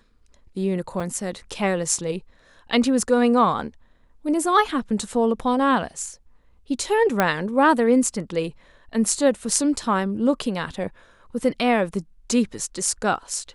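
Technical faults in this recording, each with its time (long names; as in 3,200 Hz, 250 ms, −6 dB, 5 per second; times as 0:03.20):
0:01.00: drop-out 4.6 ms
0:07.20: click −5 dBFS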